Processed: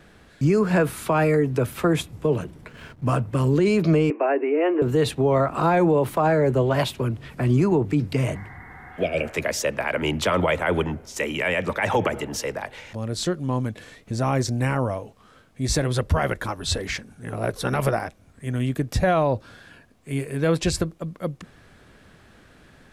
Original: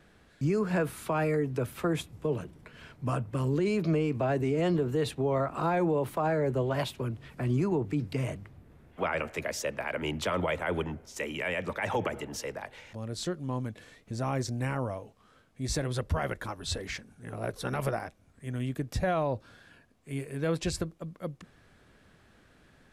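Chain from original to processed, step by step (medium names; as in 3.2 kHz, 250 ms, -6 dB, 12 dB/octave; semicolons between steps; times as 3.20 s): 2.69–3.22 s: hysteresis with a dead band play -52 dBFS; 4.10–4.82 s: Chebyshev band-pass 290–2700 Hz, order 5; 8.38–9.24 s: spectral replace 730–2200 Hz both; trim +8.5 dB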